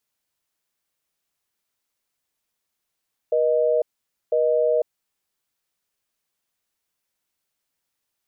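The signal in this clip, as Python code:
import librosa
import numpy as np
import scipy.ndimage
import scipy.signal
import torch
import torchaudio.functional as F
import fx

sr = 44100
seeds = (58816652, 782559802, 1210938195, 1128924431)

y = fx.call_progress(sr, length_s=1.57, kind='busy tone', level_db=-19.5)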